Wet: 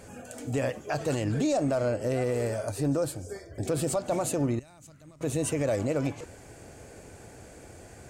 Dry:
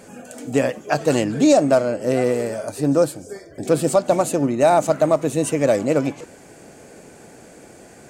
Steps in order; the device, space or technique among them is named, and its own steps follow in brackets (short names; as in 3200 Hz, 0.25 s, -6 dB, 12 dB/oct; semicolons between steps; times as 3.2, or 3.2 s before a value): car stereo with a boomy subwoofer (resonant low shelf 130 Hz +10 dB, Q 1.5; limiter -15 dBFS, peak gain reduction 9 dB); 4.59–5.21 passive tone stack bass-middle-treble 6-0-2; gain -4.5 dB